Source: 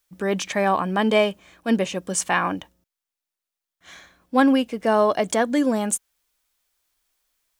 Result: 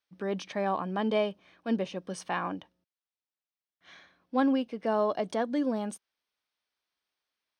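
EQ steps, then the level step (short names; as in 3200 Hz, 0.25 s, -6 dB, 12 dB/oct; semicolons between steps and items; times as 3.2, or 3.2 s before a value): HPF 110 Hz 12 dB/oct; dynamic EQ 2100 Hz, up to -6 dB, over -38 dBFS, Q 1; polynomial smoothing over 15 samples; -8.0 dB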